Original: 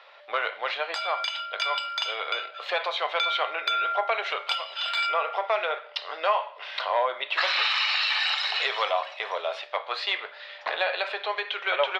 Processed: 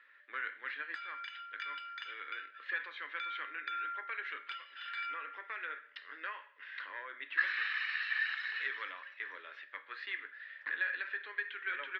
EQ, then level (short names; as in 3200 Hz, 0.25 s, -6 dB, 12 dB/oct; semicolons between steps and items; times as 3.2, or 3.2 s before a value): double band-pass 700 Hz, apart 2.6 oct; 0.0 dB